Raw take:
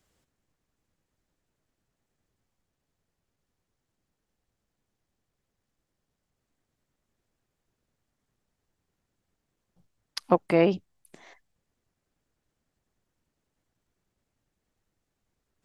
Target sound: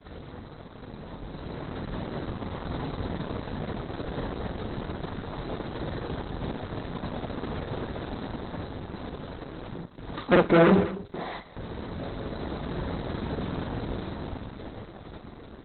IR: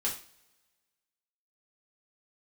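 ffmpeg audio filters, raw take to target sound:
-filter_complex "[0:a]aeval=exprs='val(0)+0.5*0.0501*sgn(val(0))':c=same,asplit=2[a][b];[b]adelay=47,volume=-2.5dB[c];[a][c]amix=inputs=2:normalize=0,bandreject=f=202.2:t=h:w=4,bandreject=f=404.4:t=h:w=4,bandreject=f=606.6:t=h:w=4,bandreject=f=808.8:t=h:w=4,bandreject=f=1.011k:t=h:w=4,bandreject=f=1.2132k:t=h:w=4,bandreject=f=1.4154k:t=h:w=4,bandreject=f=1.6176k:t=h:w=4,bandreject=f=1.8198k:t=h:w=4,agate=range=-33dB:threshold=-23dB:ratio=3:detection=peak,firequalizer=gain_entry='entry(410,0);entry(2700,-22);entry(4800,-5);entry(9900,-24)':delay=0.05:min_phase=1,dynaudnorm=f=200:g=17:m=10.5dB,asoftclip=type=tanh:threshold=-17.5dB,highpass=44,tiltshelf=f=1.2k:g=-4.5,aecho=1:1:208:0.2,asplit=2[d][e];[1:a]atrim=start_sample=2205,asetrate=48510,aresample=44100[f];[e][f]afir=irnorm=-1:irlink=0,volume=-13dB[g];[d][g]amix=inputs=2:normalize=0,volume=6dB" -ar 48000 -c:a libopus -b:a 8k

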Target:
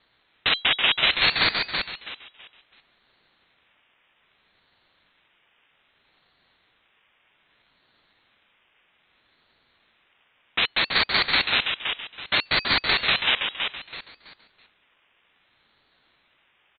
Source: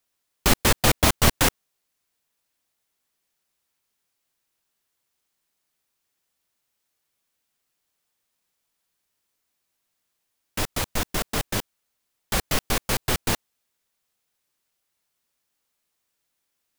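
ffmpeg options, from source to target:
-filter_complex "[0:a]asplit=2[a][b];[b]highpass=f=720:p=1,volume=35dB,asoftclip=type=tanh:threshold=-3.5dB[c];[a][c]amix=inputs=2:normalize=0,lowpass=f=1.1k:p=1,volume=-6dB,asplit=2[d][e];[e]aecho=0:1:328|656|984|1312:0.531|0.159|0.0478|0.0143[f];[d][f]amix=inputs=2:normalize=0,lowpass=f=3.1k:t=q:w=0.5098,lowpass=f=3.1k:t=q:w=0.6013,lowpass=f=3.1k:t=q:w=0.9,lowpass=f=3.1k:t=q:w=2.563,afreqshift=-3600,aeval=exprs='val(0)*sin(2*PI*650*n/s+650*0.65/0.63*sin(2*PI*0.63*n/s))':c=same"

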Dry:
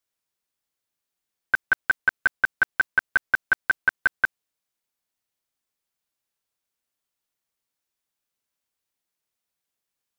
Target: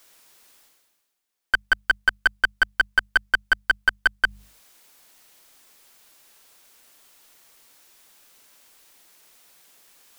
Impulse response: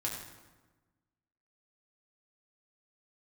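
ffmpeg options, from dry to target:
-af "aeval=exprs='clip(val(0),-1,0.133)':c=same,equalizer=f=100:t=o:w=1.9:g=-8.5,bandreject=f=50:t=h:w=6,bandreject=f=100:t=h:w=6,bandreject=f=150:t=h:w=6,bandreject=f=200:t=h:w=6,areverse,acompressor=mode=upward:threshold=-38dB:ratio=2.5,areverse,volume=3.5dB"

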